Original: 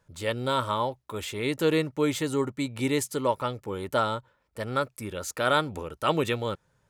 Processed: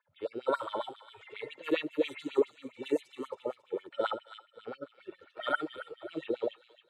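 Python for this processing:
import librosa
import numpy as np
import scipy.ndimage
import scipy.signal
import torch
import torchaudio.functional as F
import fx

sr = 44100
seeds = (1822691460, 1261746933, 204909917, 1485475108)

y = fx.hpss_only(x, sr, part='harmonic')
y = fx.env_lowpass(y, sr, base_hz=2200.0, full_db=-22.0)
y = fx.low_shelf(y, sr, hz=120.0, db=6.0)
y = fx.echo_wet_highpass(y, sr, ms=272, feedback_pct=37, hz=1900.0, wet_db=-8)
y = fx.filter_lfo_highpass(y, sr, shape='sine', hz=7.4, low_hz=330.0, high_hz=3100.0, q=4.4)
y = y * 10.0 ** (-7.0 / 20.0)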